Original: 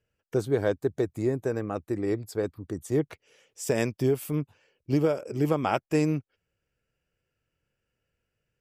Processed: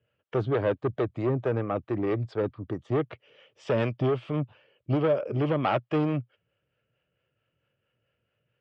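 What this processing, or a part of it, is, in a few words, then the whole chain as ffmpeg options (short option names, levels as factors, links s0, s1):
guitar amplifier with harmonic tremolo: -filter_complex "[0:a]acrossover=split=420[s0][s1];[s0]aeval=exprs='val(0)*(1-0.5/2+0.5/2*cos(2*PI*4.5*n/s))':c=same[s2];[s1]aeval=exprs='val(0)*(1-0.5/2-0.5/2*cos(2*PI*4.5*n/s))':c=same[s3];[s2][s3]amix=inputs=2:normalize=0,asoftclip=type=tanh:threshold=0.0501,highpass=90,equalizer=f=120:t=q:w=4:g=7,equalizer=f=590:t=q:w=4:g=7,equalizer=f=1200:t=q:w=4:g=5,equalizer=f=3100:t=q:w=4:g=6,lowpass=f=3500:w=0.5412,lowpass=f=3500:w=1.3066,volume=1.68"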